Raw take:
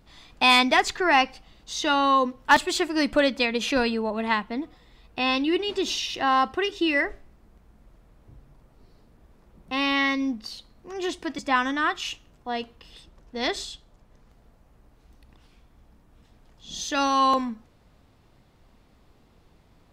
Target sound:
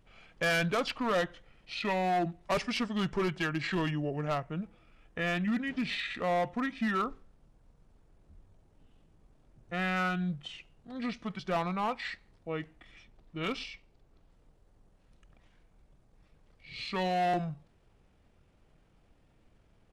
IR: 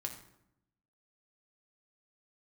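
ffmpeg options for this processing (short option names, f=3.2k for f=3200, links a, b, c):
-af "volume=19dB,asoftclip=hard,volume=-19dB,asetrate=29433,aresample=44100,atempo=1.49831,volume=-6dB"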